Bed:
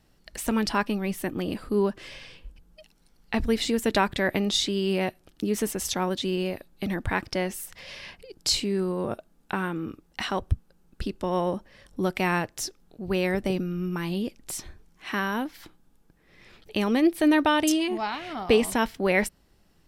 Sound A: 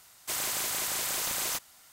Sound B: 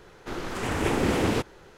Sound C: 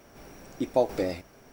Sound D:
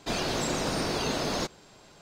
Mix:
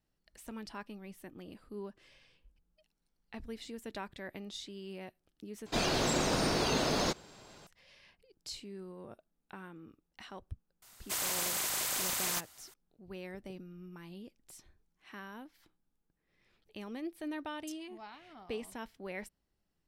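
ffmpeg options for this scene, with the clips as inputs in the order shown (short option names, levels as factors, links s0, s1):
-filter_complex "[0:a]volume=0.106,asplit=2[s0][s1];[s0]atrim=end=5.664[s2];[4:a]atrim=end=2.01,asetpts=PTS-STARTPTS,volume=0.891[s3];[s1]atrim=start=7.666[s4];[1:a]atrim=end=1.92,asetpts=PTS-STARTPTS,volume=0.75,afade=t=in:d=0.004:c=hsin,afade=t=out:st=1.916:d=0.004:c=hsin,adelay=477162S[s5];[s2][s3]acrossfade=d=0.004:c1=hsin:c2=hsin[s6];[s6][s4]acrossfade=d=0.004:c1=hsin:c2=hsin[s7];[s7][s5]amix=inputs=2:normalize=0"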